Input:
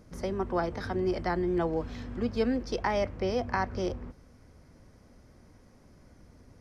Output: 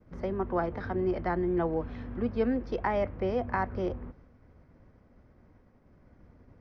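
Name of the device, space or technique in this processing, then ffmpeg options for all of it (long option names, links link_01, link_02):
hearing-loss simulation: -af "lowpass=2200,agate=range=-33dB:threshold=-52dB:ratio=3:detection=peak"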